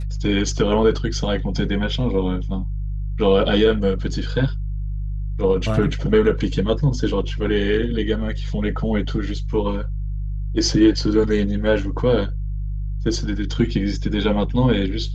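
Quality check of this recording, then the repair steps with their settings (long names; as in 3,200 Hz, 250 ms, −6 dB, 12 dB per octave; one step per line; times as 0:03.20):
mains hum 50 Hz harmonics 3 −25 dBFS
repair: hum removal 50 Hz, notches 3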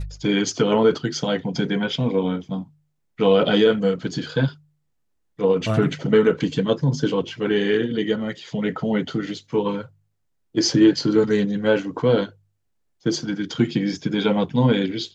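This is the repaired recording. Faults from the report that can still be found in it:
none of them is left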